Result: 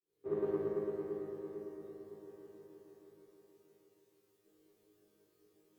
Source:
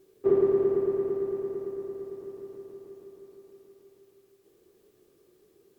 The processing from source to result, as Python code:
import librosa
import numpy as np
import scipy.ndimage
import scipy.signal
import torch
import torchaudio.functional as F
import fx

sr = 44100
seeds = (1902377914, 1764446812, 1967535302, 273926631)

y = fx.fade_in_head(x, sr, length_s=0.52)
y = fx.resonator_bank(y, sr, root=44, chord='fifth', decay_s=0.55)
y = fx.cheby_harmonics(y, sr, harmonics=(3,), levels_db=(-24,), full_scale_db=-34.5)
y = y * 10.0 ** (10.5 / 20.0)